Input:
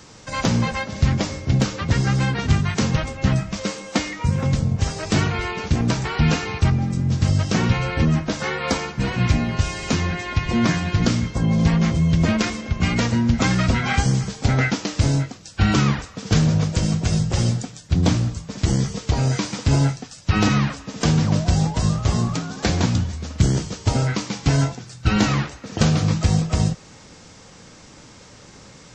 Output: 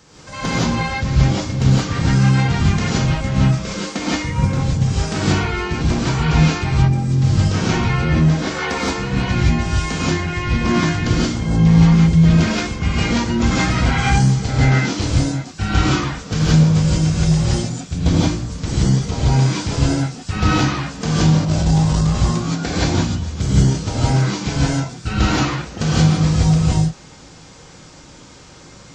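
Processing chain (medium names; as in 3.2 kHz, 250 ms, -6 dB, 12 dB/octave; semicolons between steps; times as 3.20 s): gated-style reverb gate 200 ms rising, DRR -7.5 dB; 21.41–22.20 s: transient shaper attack -12 dB, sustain +2 dB; trim -5.5 dB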